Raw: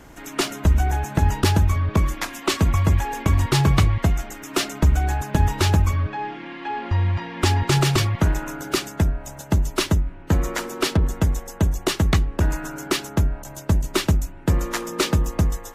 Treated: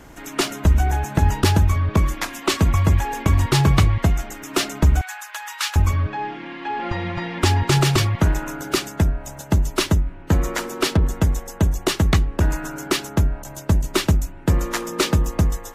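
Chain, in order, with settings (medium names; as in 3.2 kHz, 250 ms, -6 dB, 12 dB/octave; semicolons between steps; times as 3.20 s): 5.01–5.76 s: high-pass 1.1 kHz 24 dB/octave; 6.79–7.39 s: comb 5.8 ms, depth 91%; trim +1.5 dB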